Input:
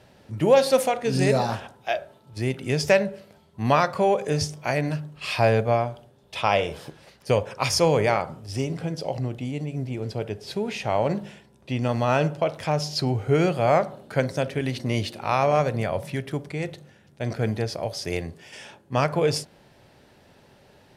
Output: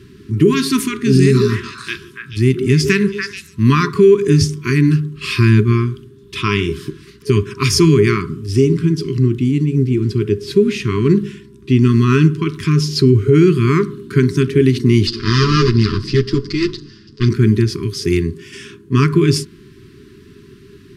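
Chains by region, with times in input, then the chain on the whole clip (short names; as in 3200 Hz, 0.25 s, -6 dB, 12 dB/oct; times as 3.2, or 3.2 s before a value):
1.2–3.89 bell 450 Hz -8.5 dB 1 oct + delay with a stepping band-pass 0.144 s, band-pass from 560 Hz, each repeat 1.4 oct, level 0 dB
15.07–17.29 minimum comb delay 9.1 ms + synth low-pass 4900 Hz, resonance Q 9.4 + notch 2300 Hz
whole clip: FFT band-reject 420–990 Hz; resonant low shelf 560 Hz +6.5 dB, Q 3; maximiser +8.5 dB; gain -1 dB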